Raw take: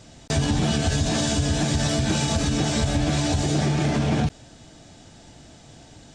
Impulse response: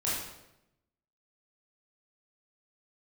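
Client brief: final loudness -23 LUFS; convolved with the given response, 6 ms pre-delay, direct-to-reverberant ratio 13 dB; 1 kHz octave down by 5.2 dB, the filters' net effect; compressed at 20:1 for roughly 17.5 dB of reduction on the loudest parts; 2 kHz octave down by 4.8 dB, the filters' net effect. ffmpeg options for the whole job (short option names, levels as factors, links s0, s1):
-filter_complex "[0:a]equalizer=f=1000:t=o:g=-7,equalizer=f=2000:t=o:g=-4,acompressor=threshold=0.0158:ratio=20,asplit=2[s0][s1];[1:a]atrim=start_sample=2205,adelay=6[s2];[s1][s2]afir=irnorm=-1:irlink=0,volume=0.1[s3];[s0][s3]amix=inputs=2:normalize=0,volume=7.5"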